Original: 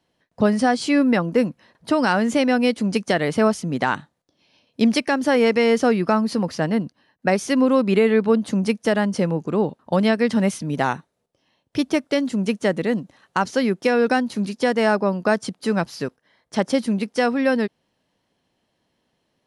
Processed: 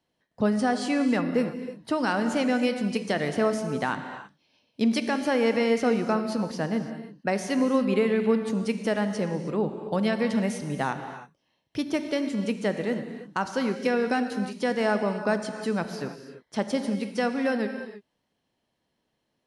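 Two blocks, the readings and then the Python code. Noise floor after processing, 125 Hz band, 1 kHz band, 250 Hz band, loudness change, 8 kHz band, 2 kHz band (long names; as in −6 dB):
−78 dBFS, −6.5 dB, −6.0 dB, −6.0 dB, −6.0 dB, −6.0 dB, −6.0 dB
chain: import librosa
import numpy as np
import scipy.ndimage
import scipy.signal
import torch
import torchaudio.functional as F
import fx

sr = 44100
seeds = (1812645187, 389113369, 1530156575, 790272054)

y = fx.rev_gated(x, sr, seeds[0], gate_ms=350, shape='flat', drr_db=7.0)
y = F.gain(torch.from_numpy(y), -7.0).numpy()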